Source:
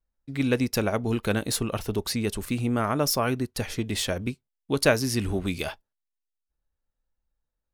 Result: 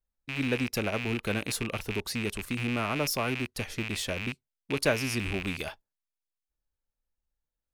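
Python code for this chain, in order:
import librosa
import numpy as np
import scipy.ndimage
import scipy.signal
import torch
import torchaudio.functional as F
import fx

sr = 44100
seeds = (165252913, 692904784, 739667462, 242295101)

y = fx.rattle_buzz(x, sr, strikes_db=-36.0, level_db=-17.0)
y = y * librosa.db_to_amplitude(-5.5)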